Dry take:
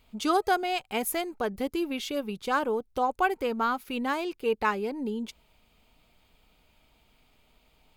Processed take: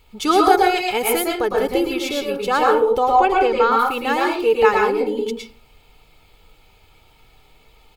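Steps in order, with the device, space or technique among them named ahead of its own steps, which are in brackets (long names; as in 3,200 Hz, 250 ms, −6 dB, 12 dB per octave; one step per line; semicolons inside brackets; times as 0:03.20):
0:03.07–0:03.72: low-pass filter 6,600 Hz 12 dB per octave
microphone above a desk (comb filter 2.3 ms, depth 56%; convolution reverb RT60 0.40 s, pre-delay 103 ms, DRR −1.5 dB)
level +6.5 dB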